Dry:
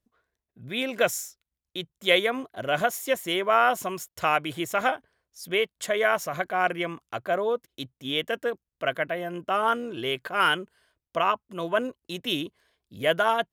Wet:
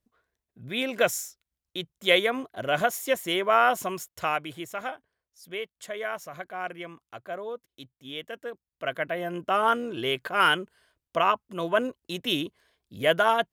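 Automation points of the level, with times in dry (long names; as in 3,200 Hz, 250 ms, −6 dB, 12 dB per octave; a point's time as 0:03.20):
0:03.94 0 dB
0:04.85 −9.5 dB
0:08.39 −9.5 dB
0:09.26 +1 dB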